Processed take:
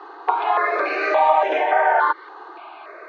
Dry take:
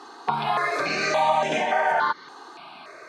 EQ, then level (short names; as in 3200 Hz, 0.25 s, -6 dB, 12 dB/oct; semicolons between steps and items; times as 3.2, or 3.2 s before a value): steep high-pass 310 Hz 96 dB/oct; LPF 2100 Hz 12 dB/oct; air absorption 65 m; +5.5 dB